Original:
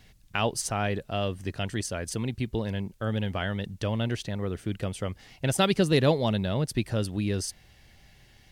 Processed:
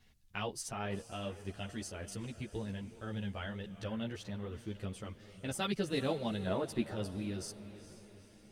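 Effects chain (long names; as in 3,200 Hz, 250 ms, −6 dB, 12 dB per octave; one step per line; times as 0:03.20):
0:06.46–0:06.94: flat-topped bell 690 Hz +8.5 dB 3 octaves
feedback delay with all-pass diffusion 455 ms, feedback 49%, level −14 dB
string-ensemble chorus
level −8 dB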